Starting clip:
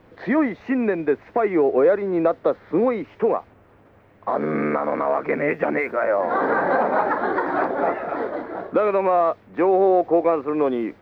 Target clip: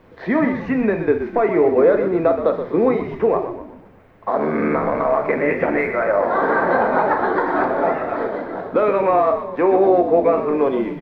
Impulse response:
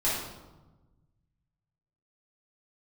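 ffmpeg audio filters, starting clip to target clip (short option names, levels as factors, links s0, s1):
-filter_complex "[0:a]asplit=6[s0][s1][s2][s3][s4][s5];[s1]adelay=124,afreqshift=-52,volume=0.355[s6];[s2]adelay=248,afreqshift=-104,volume=0.166[s7];[s3]adelay=372,afreqshift=-156,volume=0.0785[s8];[s4]adelay=496,afreqshift=-208,volume=0.0367[s9];[s5]adelay=620,afreqshift=-260,volume=0.0174[s10];[s0][s6][s7][s8][s9][s10]amix=inputs=6:normalize=0,asplit=2[s11][s12];[1:a]atrim=start_sample=2205,atrim=end_sample=3969[s13];[s12][s13]afir=irnorm=-1:irlink=0,volume=0.211[s14];[s11][s14]amix=inputs=2:normalize=0"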